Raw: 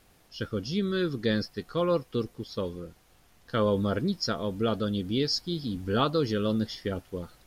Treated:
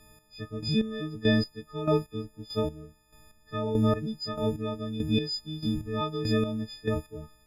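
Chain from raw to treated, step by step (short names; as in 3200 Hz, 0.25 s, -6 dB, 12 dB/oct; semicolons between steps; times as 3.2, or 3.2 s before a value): frequency quantiser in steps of 6 st; chopper 1.6 Hz, depth 65%, duty 30%; tilt -2.5 dB/oct; gain -1.5 dB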